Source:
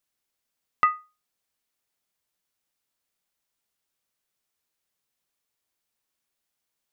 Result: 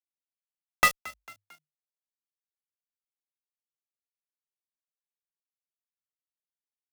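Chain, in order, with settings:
spectral envelope flattened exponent 0.3
high-pass filter 640 Hz 6 dB per octave
downward compressor 1.5 to 1, threshold −25 dBFS, peak gain reduction 3.5 dB
dead-zone distortion −31 dBFS
bit-depth reduction 6 bits, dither none
fuzz pedal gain 33 dB, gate −32 dBFS
echo with shifted repeats 224 ms, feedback 46%, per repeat +50 Hz, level −20 dB

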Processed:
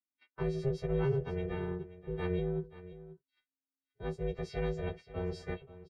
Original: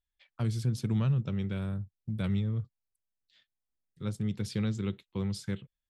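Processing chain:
every partial snapped to a pitch grid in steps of 3 semitones
noise gate −55 dBFS, range −13 dB
low-pass filter 2,000 Hz 12 dB per octave
ring modulation 270 Hz
single-tap delay 531 ms −16 dB

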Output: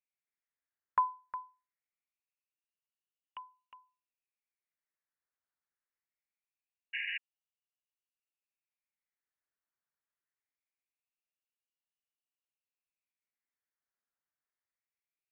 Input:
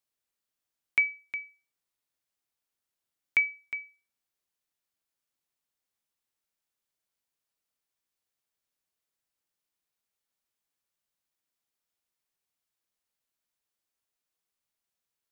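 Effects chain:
auto-filter band-pass sine 0.23 Hz 400–1,800 Hz
sound drawn into the spectrogram noise, 0:06.93–0:07.18, 360–1,700 Hz −37 dBFS
voice inversion scrambler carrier 3,300 Hz

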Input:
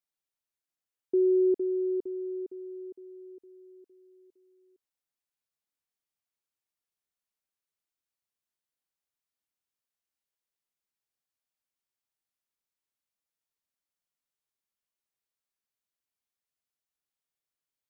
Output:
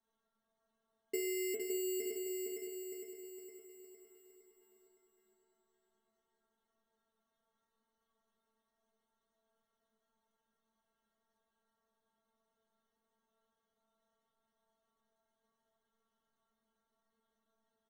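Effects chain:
low-shelf EQ 350 Hz −5 dB
comb filter 7.3 ms, depth 53%
in parallel at −1.5 dB: brickwall limiter −33 dBFS, peak gain reduction 11 dB
on the sum: decimation without filtering 18×
stiff-string resonator 220 Hz, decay 0.34 s, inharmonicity 0.002
repeating echo 563 ms, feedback 37%, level −5 dB
on a send at −7 dB: convolution reverb RT60 1.2 s, pre-delay 33 ms
on the sum: level +12 dB

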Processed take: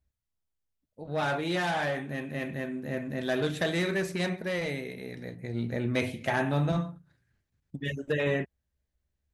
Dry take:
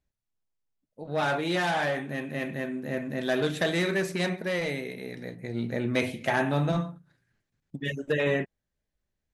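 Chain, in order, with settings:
parametric band 70 Hz +12.5 dB 1 octave
level −2.5 dB

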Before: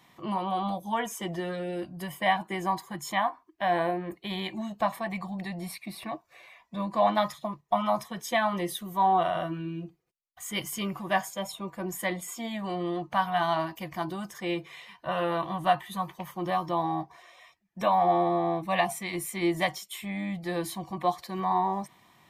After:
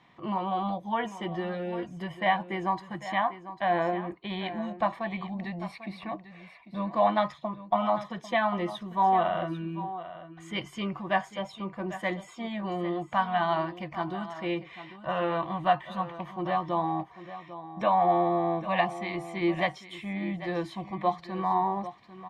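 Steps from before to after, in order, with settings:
low-pass filter 3,200 Hz 12 dB per octave
single-tap delay 796 ms −13.5 dB

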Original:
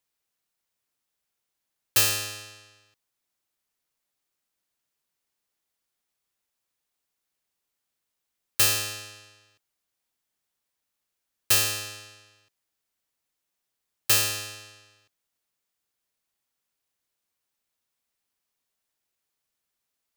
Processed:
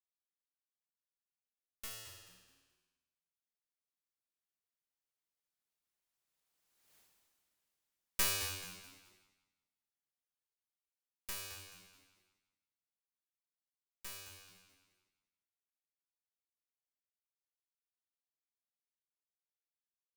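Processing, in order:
wavefolder on the positive side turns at −22 dBFS
source passing by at 0:06.97, 22 m/s, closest 1.7 metres
echo with shifted repeats 215 ms, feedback 33%, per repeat −92 Hz, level −11 dB
level +14.5 dB

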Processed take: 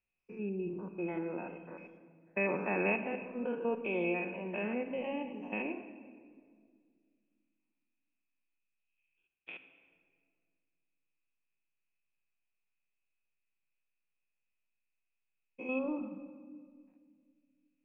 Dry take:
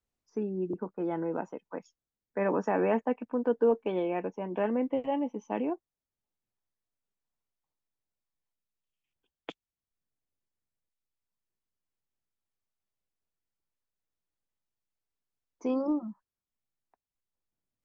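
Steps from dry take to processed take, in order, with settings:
spectrum averaged block by block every 100 ms
transistor ladder low-pass 2,600 Hz, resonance 90%
rectangular room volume 3,200 cubic metres, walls mixed, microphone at 1 metre
level +7.5 dB

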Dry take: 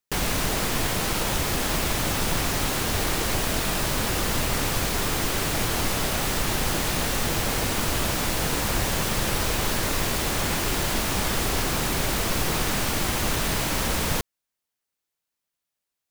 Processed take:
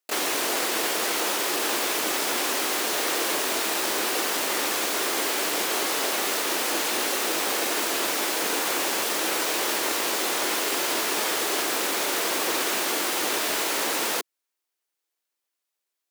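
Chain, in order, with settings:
pitch-shifted copies added +7 semitones −3 dB
Chebyshev high-pass filter 330 Hz, order 3

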